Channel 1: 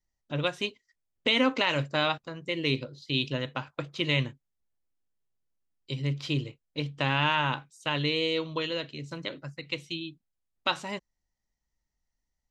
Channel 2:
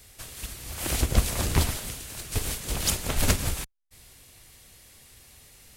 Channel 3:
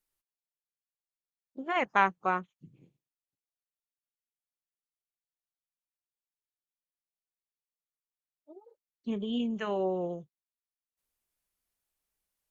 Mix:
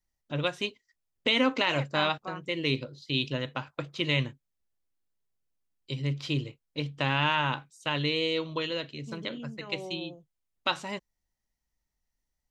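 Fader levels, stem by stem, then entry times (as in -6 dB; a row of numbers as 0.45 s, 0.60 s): -0.5 dB, mute, -10.5 dB; 0.00 s, mute, 0.00 s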